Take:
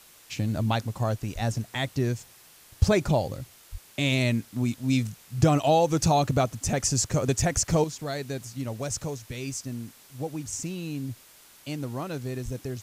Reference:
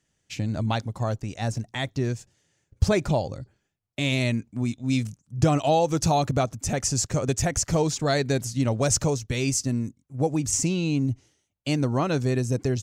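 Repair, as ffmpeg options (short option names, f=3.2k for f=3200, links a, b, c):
-filter_complex "[0:a]asplit=3[a][b][c];[a]afade=t=out:st=1.34:d=0.02[d];[b]highpass=f=140:w=0.5412,highpass=f=140:w=1.3066,afade=t=in:st=1.34:d=0.02,afade=t=out:st=1.46:d=0.02[e];[c]afade=t=in:st=1.46:d=0.02[f];[d][e][f]amix=inputs=3:normalize=0,asplit=3[g][h][i];[g]afade=t=out:st=3.71:d=0.02[j];[h]highpass=f=140:w=0.5412,highpass=f=140:w=1.3066,afade=t=in:st=3.71:d=0.02,afade=t=out:st=3.83:d=0.02[k];[i]afade=t=in:st=3.83:d=0.02[l];[j][k][l]amix=inputs=3:normalize=0,asplit=3[m][n][o];[m]afade=t=out:st=12.44:d=0.02[p];[n]highpass=f=140:w=0.5412,highpass=f=140:w=1.3066,afade=t=in:st=12.44:d=0.02,afade=t=out:st=12.56:d=0.02[q];[o]afade=t=in:st=12.56:d=0.02[r];[p][q][r]amix=inputs=3:normalize=0,afwtdn=0.0025,asetnsamples=n=441:p=0,asendcmd='7.84 volume volume 9dB',volume=0dB"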